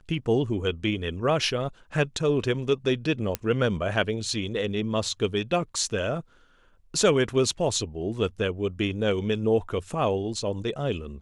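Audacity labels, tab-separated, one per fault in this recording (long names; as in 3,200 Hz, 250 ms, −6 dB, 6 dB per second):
3.350000	3.350000	click −10 dBFS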